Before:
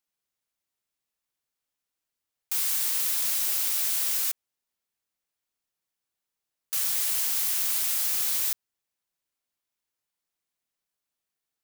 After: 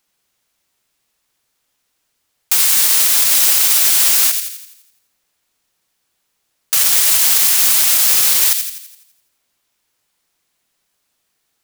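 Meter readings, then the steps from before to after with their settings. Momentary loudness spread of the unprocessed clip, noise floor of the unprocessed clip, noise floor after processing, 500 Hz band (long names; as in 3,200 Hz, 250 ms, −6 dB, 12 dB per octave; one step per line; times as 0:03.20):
5 LU, below −85 dBFS, −70 dBFS, +16.0 dB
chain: high-shelf EQ 12,000 Hz −4 dB
on a send: delay with a high-pass on its return 84 ms, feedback 50%, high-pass 2,000 Hz, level −8 dB
on the sum: boost into a limiter +19 dB
level −1 dB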